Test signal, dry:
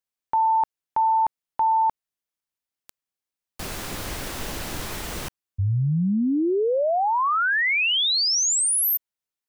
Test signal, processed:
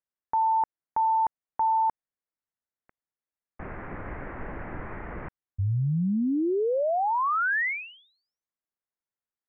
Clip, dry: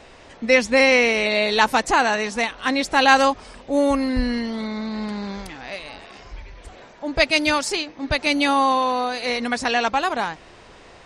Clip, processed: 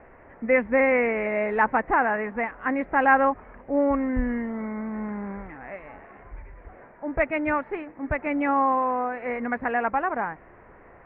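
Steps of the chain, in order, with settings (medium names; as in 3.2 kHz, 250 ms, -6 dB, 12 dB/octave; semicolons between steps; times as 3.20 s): steep low-pass 2.1 kHz 48 dB/octave; trim -3.5 dB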